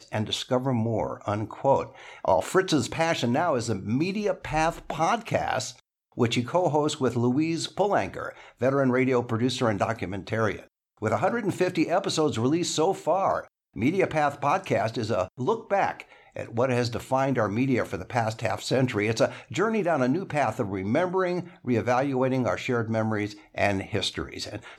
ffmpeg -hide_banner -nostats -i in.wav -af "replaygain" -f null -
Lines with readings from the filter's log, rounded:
track_gain = +6.7 dB
track_peak = 0.251